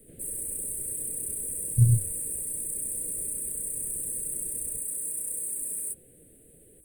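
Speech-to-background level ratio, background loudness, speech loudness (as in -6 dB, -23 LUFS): 6.0 dB, -30.5 LUFS, -24.5 LUFS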